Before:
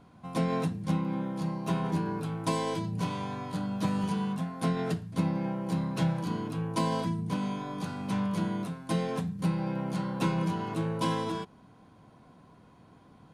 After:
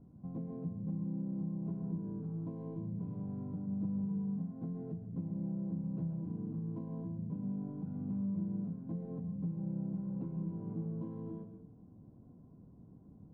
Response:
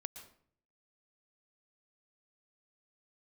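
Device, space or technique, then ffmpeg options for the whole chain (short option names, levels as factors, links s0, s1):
television next door: -filter_complex "[0:a]acompressor=threshold=0.0126:ratio=4,lowpass=300[s0];[1:a]atrim=start_sample=2205[s1];[s0][s1]afir=irnorm=-1:irlink=0,volume=1.78"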